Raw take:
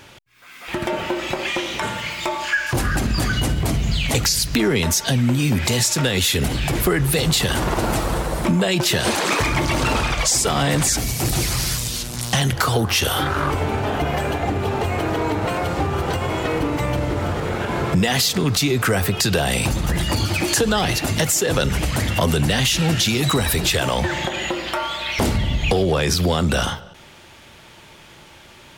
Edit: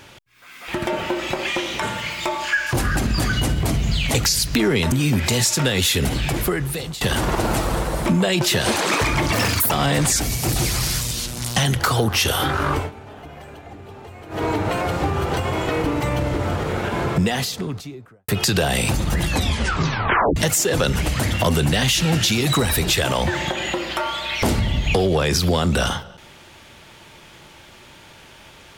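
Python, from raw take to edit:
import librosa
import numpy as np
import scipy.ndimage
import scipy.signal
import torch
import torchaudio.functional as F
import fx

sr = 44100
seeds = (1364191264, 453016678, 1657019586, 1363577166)

y = fx.studio_fade_out(x, sr, start_s=17.71, length_s=1.34)
y = fx.edit(y, sr, fx.cut(start_s=4.92, length_s=0.39),
    fx.fade_out_to(start_s=6.6, length_s=0.8, floor_db=-17.0),
    fx.speed_span(start_s=9.72, length_s=0.76, speed=1.98),
    fx.fade_down_up(start_s=13.54, length_s=1.66, db=-17.0, fade_s=0.14),
    fx.tape_stop(start_s=20.0, length_s=1.13), tone=tone)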